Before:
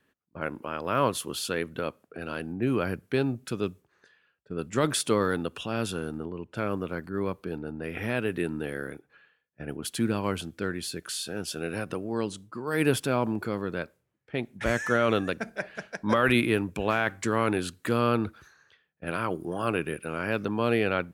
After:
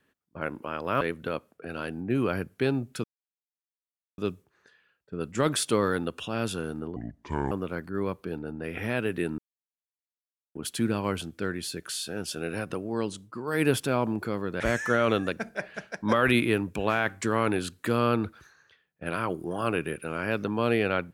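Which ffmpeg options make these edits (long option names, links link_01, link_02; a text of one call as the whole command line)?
ffmpeg -i in.wav -filter_complex "[0:a]asplit=8[link_01][link_02][link_03][link_04][link_05][link_06][link_07][link_08];[link_01]atrim=end=1.012[link_09];[link_02]atrim=start=1.528:end=3.56,asetpts=PTS-STARTPTS,afade=type=out:start_time=2.028:duration=0.004:curve=hsin,apad=pad_dur=1.14[link_10];[link_03]atrim=start=3.56:end=6.344,asetpts=PTS-STARTPTS,afade=type=in:duration=0.004:curve=hsin[link_11];[link_04]atrim=start=6.34:end=6.71,asetpts=PTS-STARTPTS,asetrate=29547,aresample=44100[link_12];[link_05]atrim=start=6.706:end=8.58,asetpts=PTS-STARTPTS,afade=type=out:start_time=1.87:duration=0.004:curve=hsin[link_13];[link_06]atrim=start=8.58:end=9.75,asetpts=PTS-STARTPTS,volume=0[link_14];[link_07]atrim=start=9.75:end=13.802,asetpts=PTS-STARTPTS,afade=type=in:duration=0.004:curve=hsin[link_15];[link_08]atrim=start=14.608[link_16];[link_10][link_11]concat=n=2:v=0:a=1[link_17];[link_09][link_17]acrossfade=duration=0.004:curve1=hsin:curve2=hsin[link_18];[link_18][link_12]acrossfade=duration=0.004:curve1=hsin:curve2=hsin[link_19];[link_13][link_14][link_15]concat=n=3:v=0:a=1[link_20];[link_19][link_20]acrossfade=duration=0.004:curve1=hsin:curve2=hsin[link_21];[link_21][link_16]acrossfade=duration=0.004:curve1=hsin:curve2=hsin" out.wav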